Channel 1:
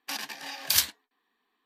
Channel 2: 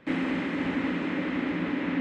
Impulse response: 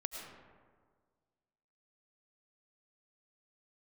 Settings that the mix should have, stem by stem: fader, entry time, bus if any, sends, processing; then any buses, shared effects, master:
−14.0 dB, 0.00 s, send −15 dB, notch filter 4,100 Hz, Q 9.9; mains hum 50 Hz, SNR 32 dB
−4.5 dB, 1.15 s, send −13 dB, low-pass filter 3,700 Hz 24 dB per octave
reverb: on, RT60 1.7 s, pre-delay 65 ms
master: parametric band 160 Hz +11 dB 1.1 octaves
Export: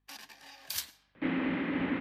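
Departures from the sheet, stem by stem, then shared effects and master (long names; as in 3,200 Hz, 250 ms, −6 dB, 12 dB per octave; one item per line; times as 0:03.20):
stem 1: missing notch filter 4,100 Hz, Q 9.9
master: missing parametric band 160 Hz +11 dB 1.1 octaves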